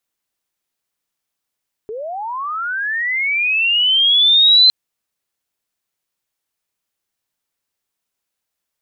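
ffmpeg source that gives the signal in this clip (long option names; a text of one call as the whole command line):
ffmpeg -f lavfi -i "aevalsrc='pow(10,(-24.5+18.5*t/2.81)/20)*sin(2*PI*(410*t+3690*t*t/(2*2.81)))':duration=2.81:sample_rate=44100" out.wav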